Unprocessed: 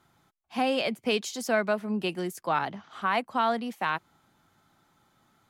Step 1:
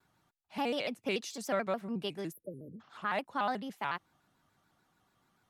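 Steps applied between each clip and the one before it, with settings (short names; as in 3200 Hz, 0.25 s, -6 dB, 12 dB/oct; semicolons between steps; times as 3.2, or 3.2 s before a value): spectral delete 2.33–2.8, 580–9800 Hz; shaped vibrato square 6.9 Hz, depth 160 cents; gain -7 dB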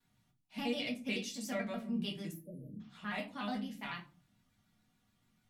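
band shelf 730 Hz -9.5 dB 2.5 oct; shoebox room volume 150 m³, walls furnished, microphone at 1.8 m; gain -4 dB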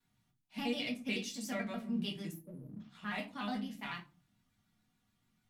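bell 560 Hz -4 dB 0.34 oct; in parallel at -7 dB: crossover distortion -55 dBFS; on the sum: gain -2.5 dB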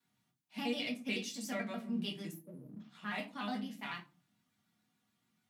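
HPF 160 Hz 12 dB/oct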